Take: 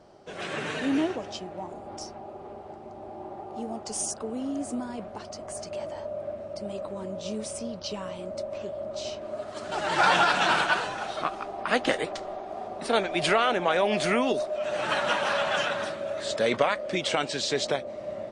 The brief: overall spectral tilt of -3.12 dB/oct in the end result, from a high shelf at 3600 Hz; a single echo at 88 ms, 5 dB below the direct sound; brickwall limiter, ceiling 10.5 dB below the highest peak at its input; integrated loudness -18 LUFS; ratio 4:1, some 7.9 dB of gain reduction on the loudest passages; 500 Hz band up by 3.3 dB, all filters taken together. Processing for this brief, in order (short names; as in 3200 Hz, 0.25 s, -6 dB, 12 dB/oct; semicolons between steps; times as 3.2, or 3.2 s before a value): bell 500 Hz +4 dB; high shelf 3600 Hz +3.5 dB; compressor 4:1, threshold -25 dBFS; limiter -23 dBFS; echo 88 ms -5 dB; gain +14 dB